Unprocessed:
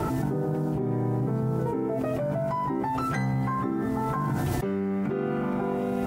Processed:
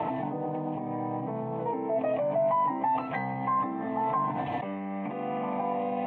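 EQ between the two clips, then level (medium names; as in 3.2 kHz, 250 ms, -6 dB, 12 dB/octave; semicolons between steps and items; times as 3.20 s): cabinet simulation 270–3400 Hz, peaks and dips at 310 Hz +9 dB, 450 Hz +6 dB, 690 Hz +4 dB, 1.1 kHz +5 dB; static phaser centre 1.4 kHz, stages 6; +1.5 dB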